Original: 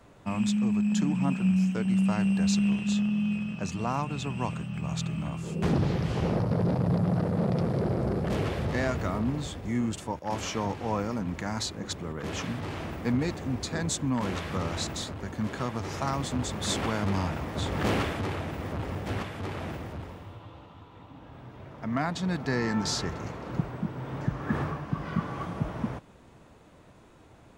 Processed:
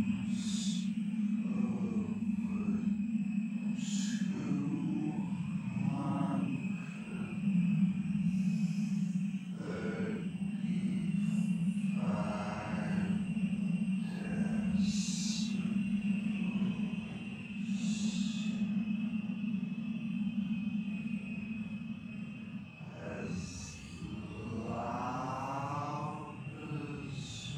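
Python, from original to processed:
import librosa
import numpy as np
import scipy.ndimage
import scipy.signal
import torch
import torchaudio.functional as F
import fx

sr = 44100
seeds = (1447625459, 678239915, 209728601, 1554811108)

y = fx.paulstretch(x, sr, seeds[0], factor=7.2, window_s=0.05, from_s=0.41)
y = y * 10.0 ** (-9.0 / 20.0)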